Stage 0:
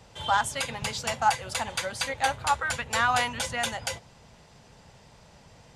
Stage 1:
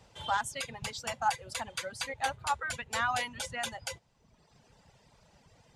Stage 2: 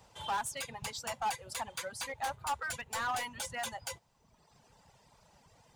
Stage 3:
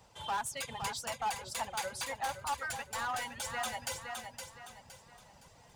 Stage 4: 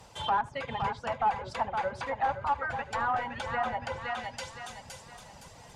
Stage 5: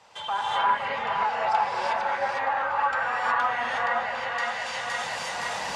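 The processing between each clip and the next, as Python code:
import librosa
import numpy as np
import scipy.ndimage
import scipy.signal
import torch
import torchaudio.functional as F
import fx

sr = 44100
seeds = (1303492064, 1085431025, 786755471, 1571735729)

y1 = fx.dereverb_blind(x, sr, rt60_s=1.1)
y1 = y1 * 10.0 ** (-6.0 / 20.0)
y2 = fx.high_shelf(y1, sr, hz=8100.0, db=11.0)
y2 = np.clip(y2, -10.0 ** (-30.5 / 20.0), 10.0 ** (-30.5 / 20.0))
y2 = fx.peak_eq(y2, sr, hz=950.0, db=6.0, octaves=0.95)
y2 = y2 * 10.0 ** (-3.5 / 20.0)
y3 = fx.echo_feedback(y2, sr, ms=515, feedback_pct=36, wet_db=-8.0)
y3 = fx.rider(y3, sr, range_db=3, speed_s=0.5)
y4 = fx.env_lowpass_down(y3, sr, base_hz=1400.0, full_db=-35.0)
y4 = y4 + 10.0 ** (-21.5 / 20.0) * np.pad(y4, (int(76 * sr / 1000.0), 0))[:len(y4)]
y4 = fx.end_taper(y4, sr, db_per_s=500.0)
y4 = y4 * 10.0 ** (8.5 / 20.0)
y5 = fx.recorder_agc(y4, sr, target_db=-25.5, rise_db_per_s=30.0, max_gain_db=30)
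y5 = fx.bandpass_q(y5, sr, hz=1800.0, q=0.52)
y5 = fx.rev_gated(y5, sr, seeds[0], gate_ms=390, shape='rising', drr_db=-7.5)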